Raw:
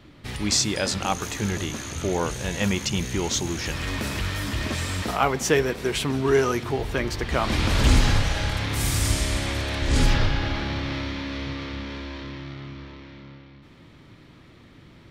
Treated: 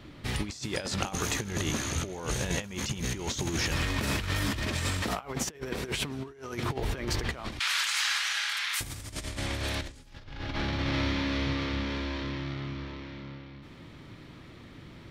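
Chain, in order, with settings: 7.59–8.81 s: high-pass 1.3 kHz 24 dB/octave; 9.63–10.24 s: treble shelf 7.1 kHz +10.5 dB; compressor with a negative ratio -29 dBFS, ratio -0.5; trim -2.5 dB

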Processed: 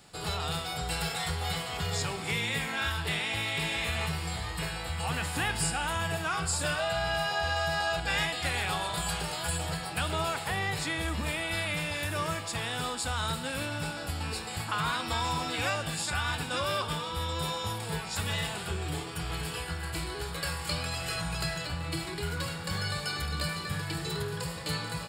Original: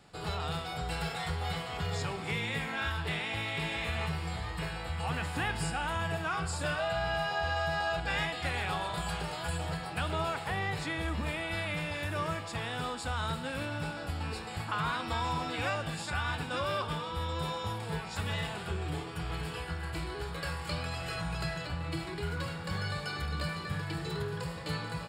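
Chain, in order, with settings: treble shelf 4.4 kHz +12 dB; trim +1 dB

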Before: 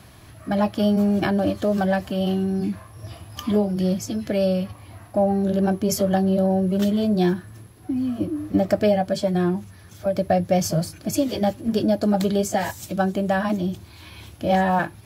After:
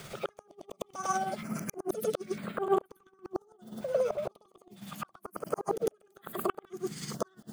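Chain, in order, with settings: in parallel at +1.5 dB: compression 6:1, threshold -32 dBFS, peak gain reduction 16.5 dB; on the sum: inverted gate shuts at -12 dBFS, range -40 dB; tremolo 8.6 Hz, depth 49%; on a send: reverse echo 204 ms -8 dB; on the sum: speed mistake 7.5 ips tape played at 15 ips; step-sequenced notch 2.1 Hz 260–5700 Hz; trim -2.5 dB

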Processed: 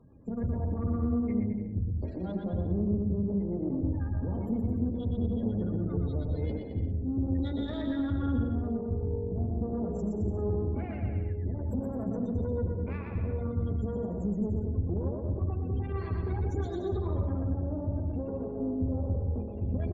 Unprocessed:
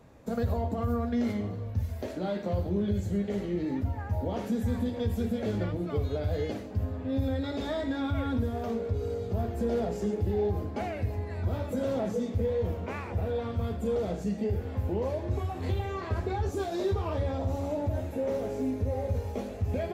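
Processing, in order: overload inside the chain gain 26 dB; FFT filter 280 Hz 0 dB, 660 Hz -11 dB, 1.1 kHz -7 dB, 6.1 kHz -2 dB; spectral gate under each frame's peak -25 dB strong; Chebyshev shaper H 4 -18 dB, 7 -39 dB, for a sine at -19 dBFS; bouncing-ball echo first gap 120 ms, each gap 0.8×, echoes 5

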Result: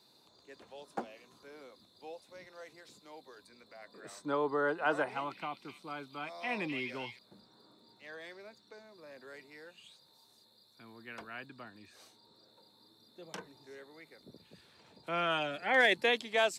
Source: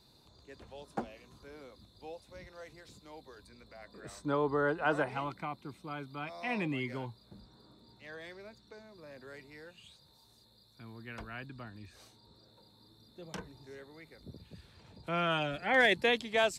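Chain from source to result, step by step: Bessel high-pass 290 Hz, order 2; 5.06–7.19 s: repeats whose band climbs or falls 254 ms, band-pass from 3.5 kHz, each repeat 0.7 oct, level -1 dB

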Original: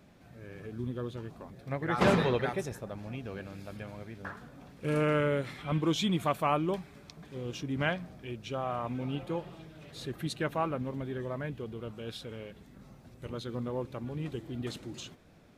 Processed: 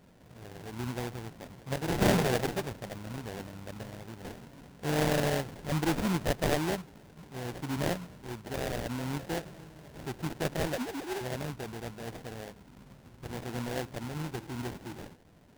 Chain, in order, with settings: 10.73–11.21 s: formants replaced by sine waves; sample-rate reducer 1.2 kHz, jitter 20%

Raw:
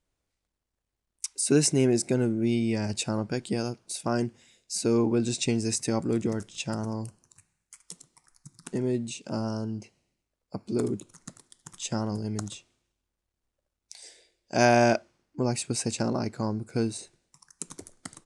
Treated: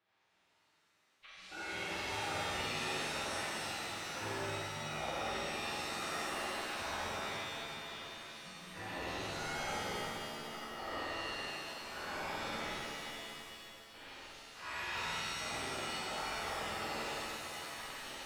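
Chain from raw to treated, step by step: spectral gate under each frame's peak -20 dB weak; reverse; compression 5:1, threshold -57 dBFS, peak gain reduction 25.5 dB; reverse; formant-preserving pitch shift -10.5 st; distance through air 340 m; on a send: flutter echo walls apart 8.3 m, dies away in 1.1 s; on the sum: pitch-shifted reverb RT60 2.6 s, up +7 st, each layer -2 dB, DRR -7.5 dB; trim +11 dB

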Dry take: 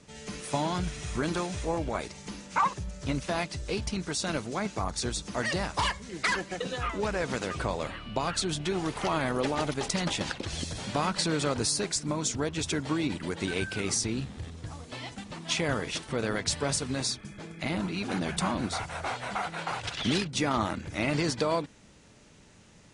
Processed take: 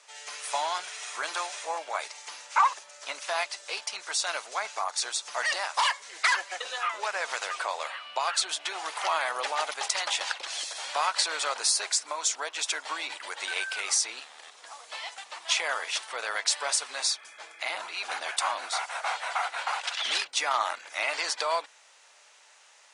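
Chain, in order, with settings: high-pass 710 Hz 24 dB/octave; trim +4 dB

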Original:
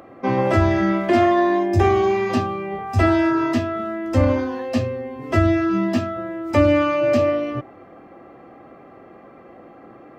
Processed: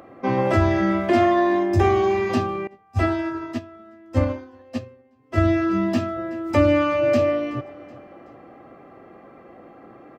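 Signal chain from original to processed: feedback delay 376 ms, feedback 46%, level -21 dB; 2.67–5.38 s: upward expansion 2.5:1, over -30 dBFS; trim -1.5 dB

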